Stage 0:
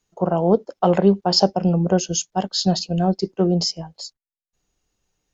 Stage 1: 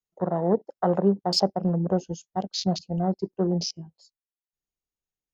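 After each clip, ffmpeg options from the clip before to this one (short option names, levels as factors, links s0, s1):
-af "afwtdn=0.0447,volume=0.501"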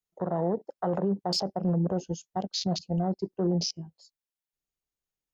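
-af "alimiter=limit=0.112:level=0:latency=1:release=27"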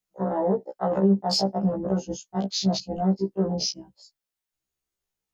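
-af "afftfilt=real='re*1.73*eq(mod(b,3),0)':imag='im*1.73*eq(mod(b,3),0)':win_size=2048:overlap=0.75,volume=2.24"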